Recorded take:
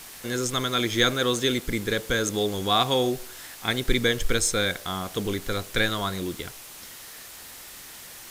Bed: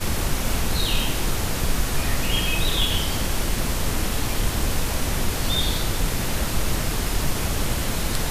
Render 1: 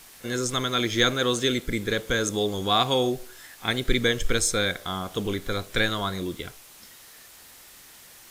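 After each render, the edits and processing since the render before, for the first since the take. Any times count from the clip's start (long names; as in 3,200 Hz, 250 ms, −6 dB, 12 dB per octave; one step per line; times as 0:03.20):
noise reduction from a noise print 6 dB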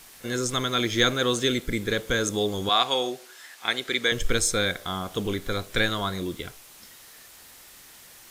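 0:02.69–0:04.12: meter weighting curve A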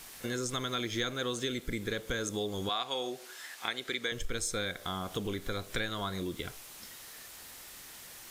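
downward compressor 3 to 1, threshold −34 dBFS, peak gain reduction 13.5 dB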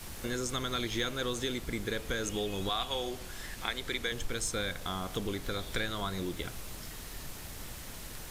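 mix in bed −21.5 dB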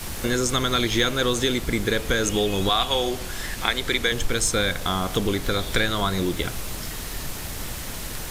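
level +11.5 dB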